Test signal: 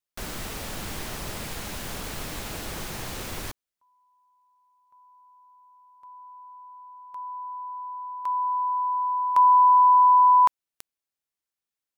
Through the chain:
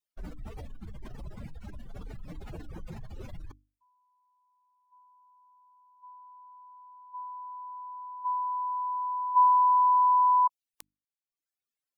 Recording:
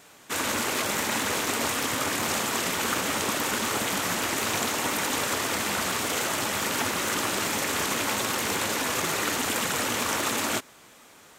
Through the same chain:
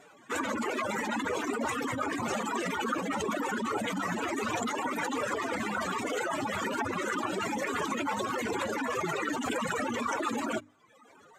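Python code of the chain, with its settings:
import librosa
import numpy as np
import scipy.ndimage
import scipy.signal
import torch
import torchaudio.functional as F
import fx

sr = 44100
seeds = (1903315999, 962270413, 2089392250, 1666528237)

y = fx.spec_expand(x, sr, power=2.5)
y = fx.dereverb_blind(y, sr, rt60_s=0.89)
y = fx.hum_notches(y, sr, base_hz=50, count=6)
y = y * librosa.db_to_amplitude(-2.0)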